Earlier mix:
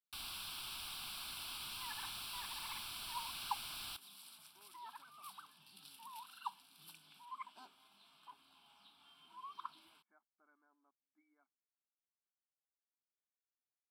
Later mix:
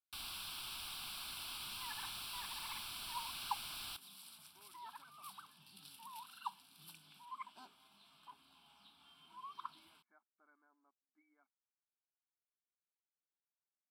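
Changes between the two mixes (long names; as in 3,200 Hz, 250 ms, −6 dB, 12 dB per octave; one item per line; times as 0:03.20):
speech: remove high-frequency loss of the air 310 metres
second sound: add bass and treble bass +6 dB, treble +1 dB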